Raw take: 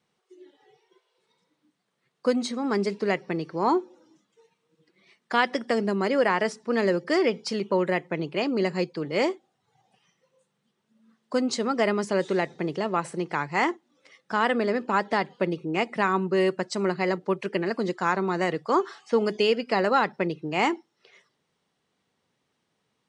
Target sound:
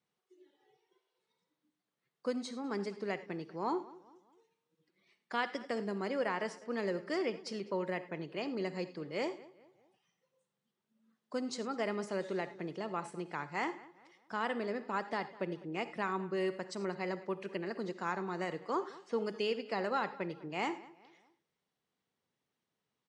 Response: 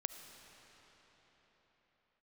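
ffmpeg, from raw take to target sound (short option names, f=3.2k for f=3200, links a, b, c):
-filter_complex "[0:a]asplit=2[a][b];[b]adelay=203,lowpass=f=3.4k:p=1,volume=-19.5dB,asplit=2[c][d];[d]adelay=203,lowpass=f=3.4k:p=1,volume=0.42,asplit=2[e][f];[f]adelay=203,lowpass=f=3.4k:p=1,volume=0.42[g];[a][c][e][g]amix=inputs=4:normalize=0[h];[1:a]atrim=start_sample=2205,afade=t=out:st=0.19:d=0.01,atrim=end_sample=8820,asetrate=57330,aresample=44100[i];[h][i]afir=irnorm=-1:irlink=0,volume=-7.5dB"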